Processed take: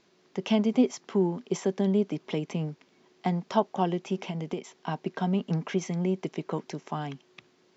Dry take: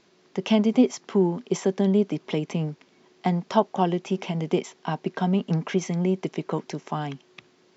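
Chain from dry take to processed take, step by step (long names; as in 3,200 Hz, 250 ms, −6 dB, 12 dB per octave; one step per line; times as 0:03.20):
0:04.26–0:04.74: downward compressor 6 to 1, threshold −25 dBFS, peak gain reduction 8.5 dB
level −4 dB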